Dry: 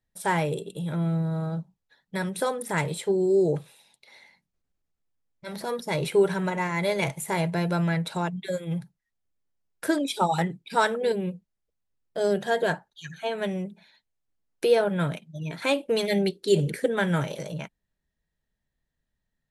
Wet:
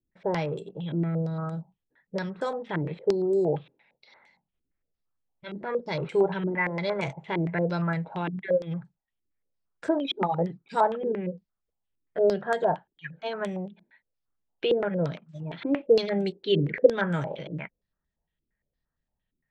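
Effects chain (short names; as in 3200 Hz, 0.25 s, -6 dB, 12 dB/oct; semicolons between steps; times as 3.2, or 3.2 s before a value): 15.24–15.85 block floating point 5-bit; air absorption 180 m; stepped low-pass 8.7 Hz 330–7900 Hz; gain -3 dB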